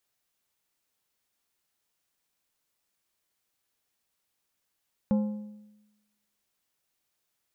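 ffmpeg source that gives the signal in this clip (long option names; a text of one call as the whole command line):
ffmpeg -f lavfi -i "aevalsrc='0.106*pow(10,-3*t/1.02)*sin(2*PI*210*t)+0.0335*pow(10,-3*t/0.775)*sin(2*PI*525*t)+0.0106*pow(10,-3*t/0.673)*sin(2*PI*840*t)+0.00335*pow(10,-3*t/0.629)*sin(2*PI*1050*t)+0.00106*pow(10,-3*t/0.582)*sin(2*PI*1365*t)':duration=1.55:sample_rate=44100" out.wav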